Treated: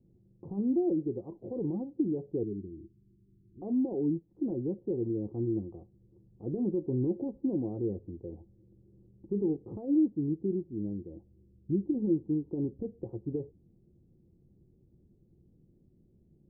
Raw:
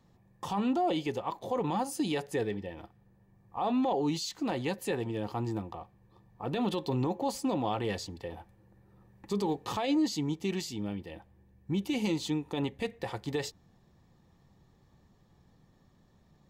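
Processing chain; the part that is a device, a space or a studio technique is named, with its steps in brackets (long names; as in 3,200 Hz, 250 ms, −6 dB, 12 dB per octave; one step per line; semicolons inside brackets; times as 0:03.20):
0:02.43–0:03.62: Chebyshev band-stop filter 400–2,900 Hz, order 5
under water (low-pass filter 430 Hz 24 dB per octave; parametric band 350 Hz +7.5 dB 0.25 octaves)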